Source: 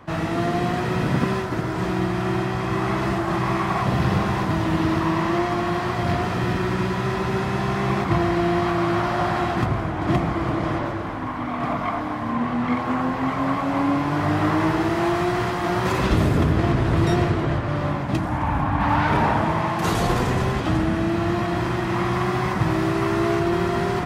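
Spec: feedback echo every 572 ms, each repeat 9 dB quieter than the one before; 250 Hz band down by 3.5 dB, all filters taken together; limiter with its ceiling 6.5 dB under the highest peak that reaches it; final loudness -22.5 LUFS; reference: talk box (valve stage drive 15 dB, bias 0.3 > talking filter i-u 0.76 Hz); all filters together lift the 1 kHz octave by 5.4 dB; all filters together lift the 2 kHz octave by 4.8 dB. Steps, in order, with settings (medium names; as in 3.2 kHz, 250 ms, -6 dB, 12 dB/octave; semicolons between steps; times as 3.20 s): peaking EQ 250 Hz -6 dB; peaking EQ 1 kHz +6 dB; peaking EQ 2 kHz +4 dB; peak limiter -11.5 dBFS; feedback delay 572 ms, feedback 35%, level -9 dB; valve stage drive 15 dB, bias 0.3; talking filter i-u 0.76 Hz; trim +14 dB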